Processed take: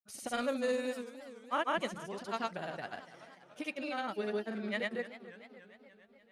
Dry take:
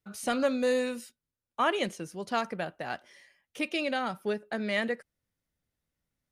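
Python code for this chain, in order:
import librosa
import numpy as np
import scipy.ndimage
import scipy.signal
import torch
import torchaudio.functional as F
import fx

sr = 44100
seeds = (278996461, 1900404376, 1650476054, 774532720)

y = fx.granulator(x, sr, seeds[0], grain_ms=100.0, per_s=20.0, spray_ms=100.0, spread_st=0)
y = fx.echo_warbled(y, sr, ms=292, feedback_pct=62, rate_hz=2.8, cents=147, wet_db=-15)
y = y * librosa.db_to_amplitude(-5.0)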